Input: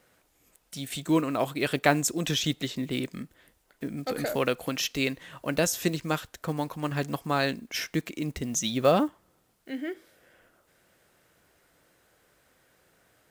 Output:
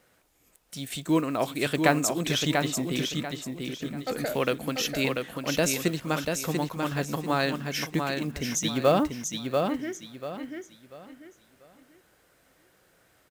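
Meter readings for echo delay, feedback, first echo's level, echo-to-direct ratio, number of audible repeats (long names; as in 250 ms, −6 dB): 690 ms, 30%, −4.5 dB, −4.0 dB, 3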